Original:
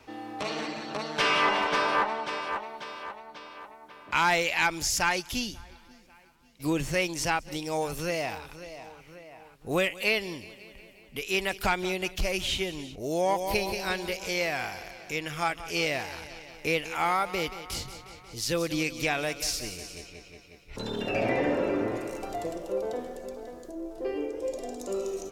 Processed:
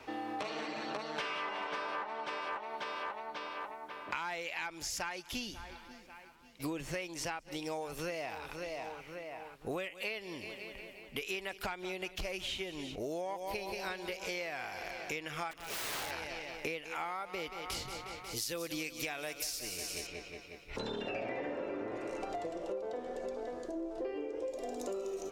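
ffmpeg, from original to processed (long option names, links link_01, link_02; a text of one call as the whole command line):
ffmpeg -i in.wav -filter_complex "[0:a]asettb=1/sr,asplit=3[link_01][link_02][link_03];[link_01]atrim=end=15.514[link_04];[link_02]atrim=start=15.51:end=16.11,asetpts=PTS-STARTPTS,afade=type=in:duration=0.004:curve=qsin,afade=type=out:start_time=0.596:duration=0.004:curve=qsin,aeval=exprs='(mod(37.6*val(0)+1,2)-1)/37.6':channel_layout=same[link_05];[link_03]atrim=start=16.106[link_06];[link_04][link_05]acrossfade=duration=0.004:curve1=hsin:curve2=qsin[link_07];[link_07][link_06]acrossfade=duration=0.004:curve1=qsin:curve2=hsin,asettb=1/sr,asplit=3[link_08][link_09][link_10];[link_08]atrim=end=18.244[link_11];[link_09]atrim=start=18.24:end=20.07,asetpts=PTS-STARTPTS,afade=type=in:duration=0.004:curve=qsin,afade=type=out:start_time=1.826:duration=0.004:curve=qsin,aemphasis=mode=production:type=50kf[link_12];[link_10]atrim=start=20.066[link_13];[link_11][link_12]acrossfade=duration=0.004:curve1=hsin:curve2=qsin[link_14];[link_14][link_13]acrossfade=duration=0.004:curve1=qsin:curve2=hsin,asettb=1/sr,asplit=3[link_15][link_16][link_17];[link_15]atrim=end=20.784[link_18];[link_16]atrim=start=20.78:end=24.49,asetpts=PTS-STARTPTS,afade=type=in:duration=0.004:curve=qsin,afade=type=out:start_time=3.706:duration=0.004:curve=qsin,lowpass=8000[link_19];[link_17]atrim=start=24.486[link_20];[link_18][link_19]acrossfade=duration=0.004:curve1=hsin:curve2=qsin[link_21];[link_21][link_20]acrossfade=duration=0.004:curve1=qsin:curve2=hsin,bass=frequency=250:gain=-7,treble=frequency=4000:gain=-5,acompressor=threshold=-39dB:ratio=12,volume=3.5dB" out.wav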